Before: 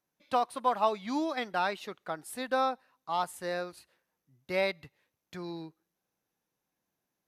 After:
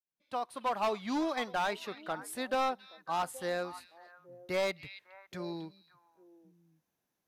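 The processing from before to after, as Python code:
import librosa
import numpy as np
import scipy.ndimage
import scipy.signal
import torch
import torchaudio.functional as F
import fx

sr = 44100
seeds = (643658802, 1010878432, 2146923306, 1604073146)

y = fx.fade_in_head(x, sr, length_s=0.91)
y = fx.echo_stepped(y, sr, ms=275, hz=3200.0, octaves=-1.4, feedback_pct=70, wet_db=-11.5)
y = np.clip(y, -10.0 ** (-26.0 / 20.0), 10.0 ** (-26.0 / 20.0))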